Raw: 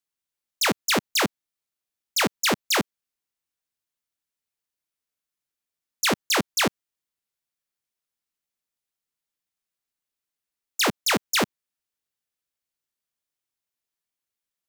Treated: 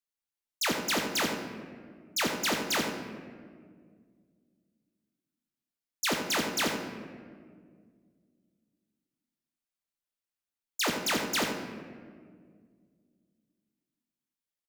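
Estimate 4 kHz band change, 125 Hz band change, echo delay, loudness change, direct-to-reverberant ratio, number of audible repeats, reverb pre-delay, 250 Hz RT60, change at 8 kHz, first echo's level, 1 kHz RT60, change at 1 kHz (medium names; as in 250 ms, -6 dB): -6.0 dB, -6.0 dB, 84 ms, -6.5 dB, 2.5 dB, 1, 3 ms, 2.8 s, -6.5 dB, -9.0 dB, 1.6 s, -6.0 dB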